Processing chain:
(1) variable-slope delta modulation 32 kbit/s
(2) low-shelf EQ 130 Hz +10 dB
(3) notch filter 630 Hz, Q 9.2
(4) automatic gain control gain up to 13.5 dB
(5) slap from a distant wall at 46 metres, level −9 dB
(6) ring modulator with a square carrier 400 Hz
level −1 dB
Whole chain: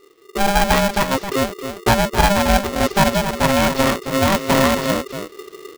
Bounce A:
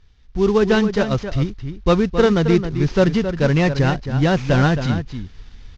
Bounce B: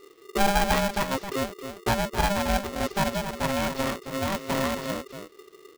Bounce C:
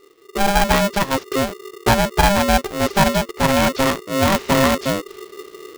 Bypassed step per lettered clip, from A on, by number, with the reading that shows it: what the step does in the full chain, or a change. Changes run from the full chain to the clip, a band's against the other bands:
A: 6, 8 kHz band −13.0 dB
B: 4, change in momentary loudness spread +1 LU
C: 5, change in momentary loudness spread +2 LU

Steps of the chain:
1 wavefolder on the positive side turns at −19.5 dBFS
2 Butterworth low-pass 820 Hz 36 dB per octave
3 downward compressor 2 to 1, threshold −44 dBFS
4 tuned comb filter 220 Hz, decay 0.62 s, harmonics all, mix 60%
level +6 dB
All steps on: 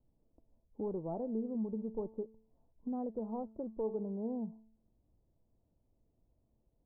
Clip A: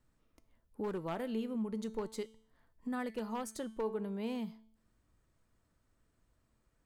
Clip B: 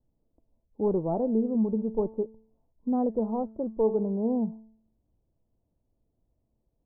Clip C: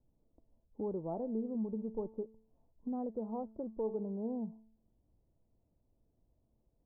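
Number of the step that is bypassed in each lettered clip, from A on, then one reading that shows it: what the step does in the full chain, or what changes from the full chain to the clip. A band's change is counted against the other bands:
2, 1 kHz band +4.5 dB
3, average gain reduction 10.5 dB
1, distortion level −20 dB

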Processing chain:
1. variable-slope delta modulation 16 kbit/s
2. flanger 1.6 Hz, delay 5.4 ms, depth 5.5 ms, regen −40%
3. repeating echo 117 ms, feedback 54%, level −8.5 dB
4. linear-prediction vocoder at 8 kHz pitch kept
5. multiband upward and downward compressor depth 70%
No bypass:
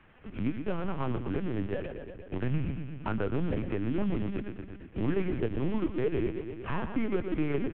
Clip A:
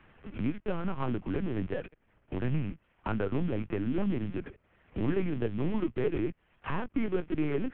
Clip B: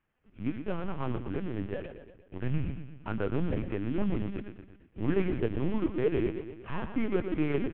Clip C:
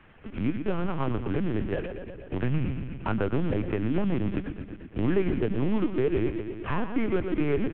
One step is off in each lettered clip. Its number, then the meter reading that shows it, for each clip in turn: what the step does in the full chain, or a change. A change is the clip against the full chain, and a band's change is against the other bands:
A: 3, change in momentary loudness spread +2 LU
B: 5, change in momentary loudness spread +4 LU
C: 2, change in integrated loudness +4.0 LU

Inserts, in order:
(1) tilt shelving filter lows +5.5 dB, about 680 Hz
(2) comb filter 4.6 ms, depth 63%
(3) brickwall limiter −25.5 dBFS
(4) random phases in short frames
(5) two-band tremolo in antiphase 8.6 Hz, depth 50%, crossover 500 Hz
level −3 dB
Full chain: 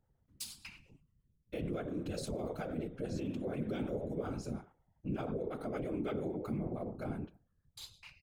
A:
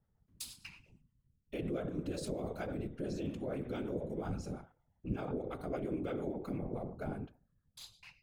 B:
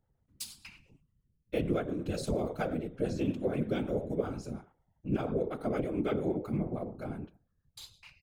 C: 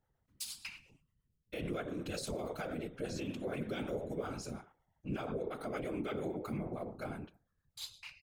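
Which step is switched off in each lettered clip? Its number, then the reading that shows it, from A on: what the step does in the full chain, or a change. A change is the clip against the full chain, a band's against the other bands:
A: 2, change in crest factor +3.5 dB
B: 3, average gain reduction 3.0 dB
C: 1, change in momentary loudness spread −4 LU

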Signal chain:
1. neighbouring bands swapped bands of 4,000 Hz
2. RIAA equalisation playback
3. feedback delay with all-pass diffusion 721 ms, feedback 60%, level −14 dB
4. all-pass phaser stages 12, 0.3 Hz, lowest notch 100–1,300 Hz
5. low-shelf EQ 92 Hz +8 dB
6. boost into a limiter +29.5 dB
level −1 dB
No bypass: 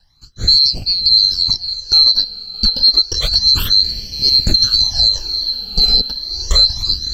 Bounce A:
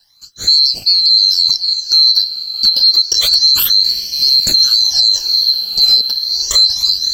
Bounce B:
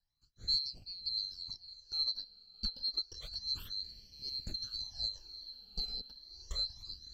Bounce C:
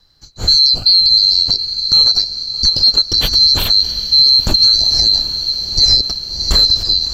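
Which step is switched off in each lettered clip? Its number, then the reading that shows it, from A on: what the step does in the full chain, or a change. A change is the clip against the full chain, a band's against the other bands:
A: 2, change in crest factor −2.0 dB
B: 6, change in crest factor +7.0 dB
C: 4, 125 Hz band −2.5 dB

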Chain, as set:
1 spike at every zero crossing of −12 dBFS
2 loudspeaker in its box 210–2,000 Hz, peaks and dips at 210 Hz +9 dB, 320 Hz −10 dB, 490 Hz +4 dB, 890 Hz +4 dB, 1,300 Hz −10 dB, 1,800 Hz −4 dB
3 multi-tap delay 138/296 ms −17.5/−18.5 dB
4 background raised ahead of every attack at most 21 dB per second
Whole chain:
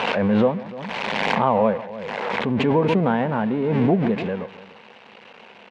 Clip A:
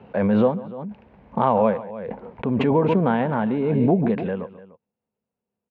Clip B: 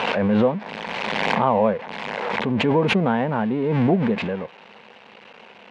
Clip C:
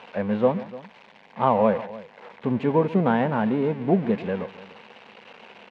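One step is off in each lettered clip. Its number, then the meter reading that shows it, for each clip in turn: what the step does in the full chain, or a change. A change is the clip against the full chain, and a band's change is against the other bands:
1, distortion level 0 dB
3, 4 kHz band +2.0 dB
4, change in crest factor +2.0 dB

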